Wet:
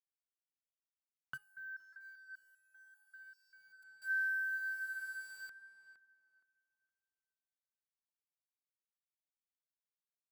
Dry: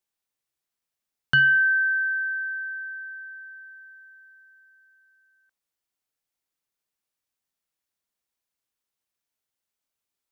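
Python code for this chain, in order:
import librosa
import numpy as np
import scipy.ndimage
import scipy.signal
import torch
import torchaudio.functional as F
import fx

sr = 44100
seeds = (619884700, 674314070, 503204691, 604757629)

y = fx.env_lowpass_down(x, sr, base_hz=2000.0, full_db=-21.5)
y = fx.peak_eq(y, sr, hz=1200.0, db=12.0, octaves=1.2)
y = fx.over_compress(y, sr, threshold_db=-24.0, ratio=-0.5)
y = fx.gate_flip(y, sr, shuts_db=-30.0, range_db=-24)
y = np.where(np.abs(y) >= 10.0 ** (-52.5 / 20.0), y, 0.0)
y = fx.echo_tape(y, sr, ms=466, feedback_pct=30, wet_db=-8.0, lp_hz=1600.0, drive_db=36.0, wow_cents=18)
y = fx.resonator_held(y, sr, hz=5.1, low_hz=140.0, high_hz=640.0, at=(1.36, 3.82), fade=0.02)
y = y * librosa.db_to_amplitude(2.0)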